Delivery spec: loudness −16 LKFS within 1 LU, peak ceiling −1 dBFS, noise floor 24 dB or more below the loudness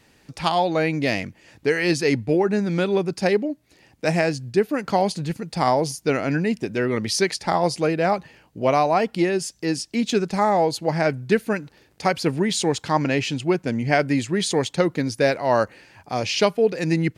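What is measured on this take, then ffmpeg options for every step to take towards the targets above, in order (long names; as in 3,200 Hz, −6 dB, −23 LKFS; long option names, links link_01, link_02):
integrated loudness −22.5 LKFS; sample peak −4.5 dBFS; target loudness −16.0 LKFS
→ -af "volume=6.5dB,alimiter=limit=-1dB:level=0:latency=1"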